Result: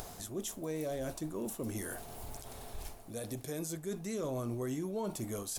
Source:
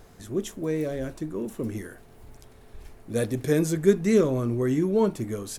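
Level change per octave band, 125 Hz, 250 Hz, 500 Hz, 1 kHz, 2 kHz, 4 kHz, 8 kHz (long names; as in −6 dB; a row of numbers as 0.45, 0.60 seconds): −12.0, −13.5, −14.0, −7.0, −11.0, −5.0, −2.5 decibels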